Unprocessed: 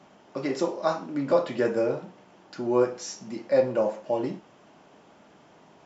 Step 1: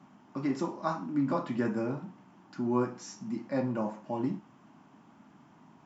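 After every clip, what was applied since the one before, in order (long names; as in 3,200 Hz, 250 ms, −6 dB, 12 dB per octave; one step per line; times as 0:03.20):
octave-band graphic EQ 125/250/500/1,000/4,000 Hz +7/+11/−11/+7/−4 dB
level −7 dB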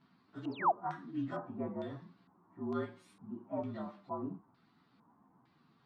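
partials spread apart or drawn together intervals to 115%
sound drawn into the spectrogram fall, 0:00.51–0:00.72, 600–5,600 Hz −24 dBFS
auto-filter low-pass square 1.1 Hz 910–4,400 Hz
level −8 dB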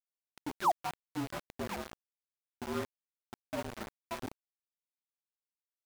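single-tap delay 1,049 ms −12.5 dB
centre clipping without the shift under −35.5 dBFS
level +1 dB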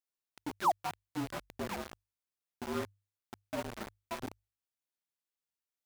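mains-hum notches 50/100 Hz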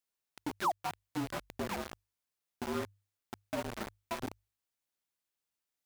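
downward compressor 2 to 1, threshold −37 dBFS, peak gain reduction 7.5 dB
level +3.5 dB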